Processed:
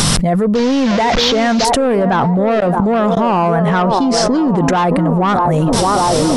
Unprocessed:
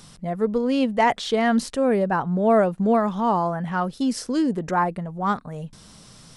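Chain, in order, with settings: 0.55–1.65 s: one-bit delta coder 32 kbps, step -24.5 dBFS; level rider gain up to 10.5 dB; saturation -11 dBFS, distortion -13 dB; 3.82–4.57 s: distance through air 110 m; on a send: feedback echo behind a band-pass 621 ms, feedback 50%, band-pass 570 Hz, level -8 dB; 2.60–3.17 s: on the sum: inverted gate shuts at -14 dBFS, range -32 dB; level flattener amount 100%

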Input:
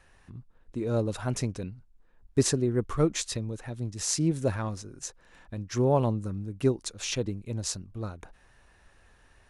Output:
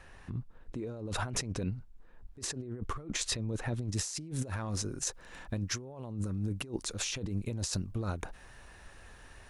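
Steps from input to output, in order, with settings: treble shelf 5.2 kHz -6 dB, from 3.88 s +2.5 dB; compressor with a negative ratio -37 dBFS, ratio -1

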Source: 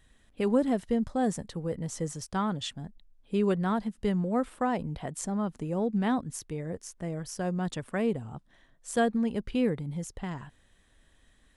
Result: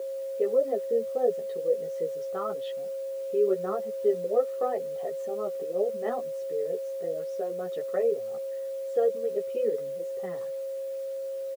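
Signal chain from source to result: resonances exaggerated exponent 1.5; low-pass 2.5 kHz 12 dB/octave; comb 1.6 ms, depth 68%; in parallel at 0 dB: compression 6:1, threshold -34 dBFS, peak gain reduction 14.5 dB; on the sum: word length cut 8-bit, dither triangular; chorus voices 6, 0.2 Hz, delay 14 ms, depth 4.3 ms; whistle 540 Hz -31 dBFS; resonant high-pass 400 Hz, resonance Q 4.9; trim -6.5 dB

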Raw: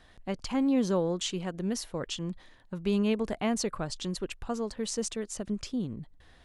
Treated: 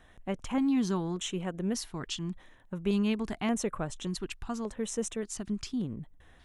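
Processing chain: LFO notch square 0.86 Hz 530–4600 Hz

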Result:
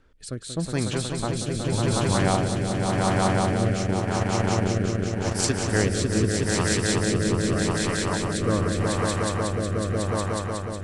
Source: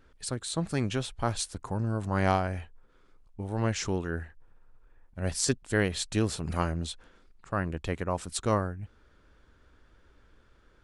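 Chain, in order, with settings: echo with a slow build-up 183 ms, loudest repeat 5, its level -3 dB; 3.85–5.48 s: transient shaper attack +5 dB, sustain -10 dB; rotary cabinet horn 0.85 Hz; trim +3 dB

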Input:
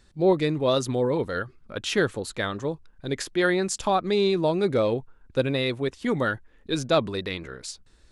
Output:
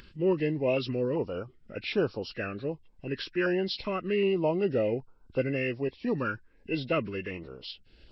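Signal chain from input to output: knee-point frequency compression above 1.4 kHz 1.5:1; upward compressor, threshold -37 dBFS; bass shelf 160 Hz -4 dB; step-sequenced notch 2.6 Hz 710–1900 Hz; trim -2.5 dB

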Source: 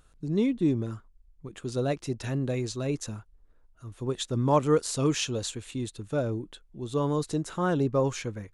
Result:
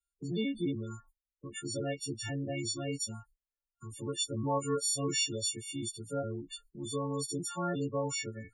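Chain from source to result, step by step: partials quantised in pitch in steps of 4 st; gate -51 dBFS, range -37 dB; loudest bins only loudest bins 16; three bands compressed up and down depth 40%; trim -7.5 dB

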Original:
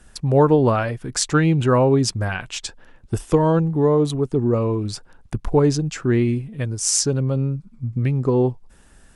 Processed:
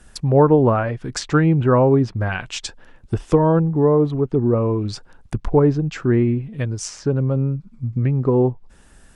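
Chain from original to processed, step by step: low-pass that closes with the level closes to 1.7 kHz, closed at -16 dBFS; trim +1.5 dB

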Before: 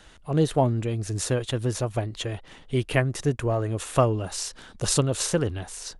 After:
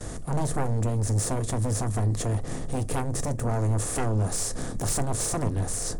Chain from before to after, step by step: spectral levelling over time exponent 0.6; FFT filter 440 Hz 0 dB, 2 kHz -19 dB, 2.9 kHz -27 dB, 7.9 kHz -12 dB; gate with hold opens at -32 dBFS; amplifier tone stack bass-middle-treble 5-5-5; band-stop 970 Hz, Q 9; in parallel at +2 dB: compression, threshold -45 dBFS, peak gain reduction 12 dB; on the sum: sine folder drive 12 dB, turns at -21.5 dBFS; on a send at -11 dB: reverberation RT60 0.25 s, pre-delay 4 ms; on the sum: trim -2 dB

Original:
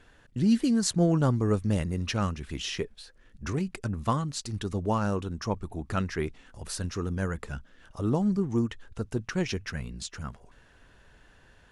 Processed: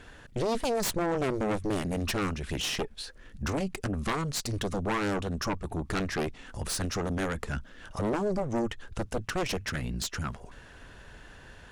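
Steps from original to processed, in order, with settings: Chebyshev shaper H 3 -10 dB, 4 -8 dB, 7 -11 dB, 8 -17 dB, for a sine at -11.5 dBFS; compression 2:1, threshold -32 dBFS, peak gain reduction 9 dB; saturation -24 dBFS, distortion -16 dB; trim +2.5 dB

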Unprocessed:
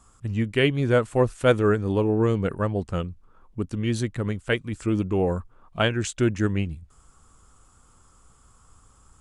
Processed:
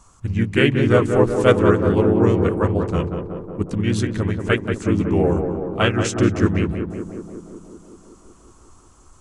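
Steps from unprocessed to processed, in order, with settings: harmony voices -3 st -2 dB; on a send: tape echo 185 ms, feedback 80%, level -5 dB, low-pass 1.4 kHz; on the sum: trim +2.5 dB

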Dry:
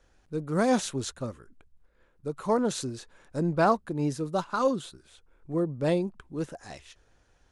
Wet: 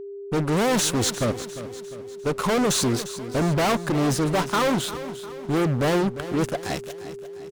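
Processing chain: fuzz box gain 38 dB, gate -47 dBFS; whistle 400 Hz -27 dBFS; feedback delay 351 ms, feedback 48%, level -13.5 dB; trim -6.5 dB

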